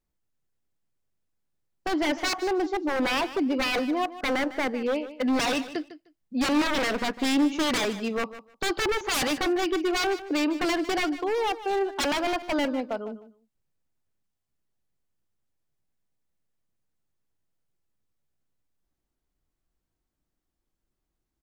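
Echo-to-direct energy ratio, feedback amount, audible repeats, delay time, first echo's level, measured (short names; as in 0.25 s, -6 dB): -14.5 dB, 17%, 2, 0.152 s, -14.5 dB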